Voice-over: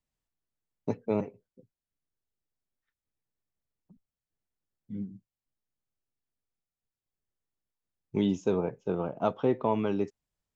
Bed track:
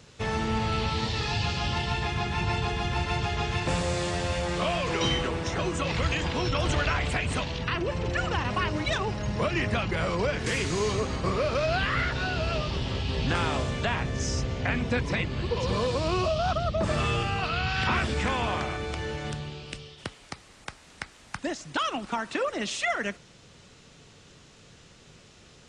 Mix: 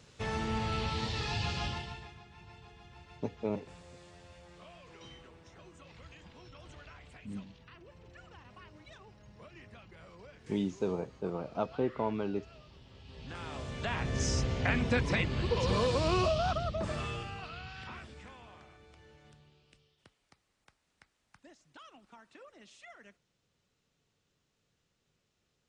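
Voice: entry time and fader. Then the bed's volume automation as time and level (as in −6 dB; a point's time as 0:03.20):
2.35 s, −5.5 dB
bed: 0:01.64 −6 dB
0:02.24 −26 dB
0:12.89 −26 dB
0:14.17 −2 dB
0:16.24 −2 dB
0:18.43 −25.5 dB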